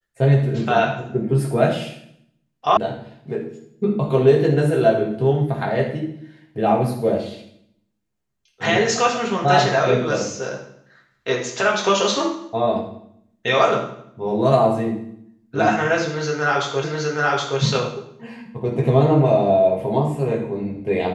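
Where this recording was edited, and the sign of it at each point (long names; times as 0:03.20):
0:02.77: cut off before it has died away
0:16.84: the same again, the last 0.77 s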